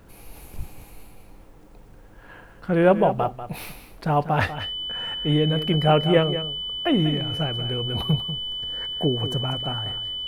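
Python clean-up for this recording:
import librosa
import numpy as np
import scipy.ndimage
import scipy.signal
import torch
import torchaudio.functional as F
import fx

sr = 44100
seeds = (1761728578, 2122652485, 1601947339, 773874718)

y = fx.notch(x, sr, hz=3000.0, q=30.0)
y = fx.fix_echo_inverse(y, sr, delay_ms=192, level_db=-11.5)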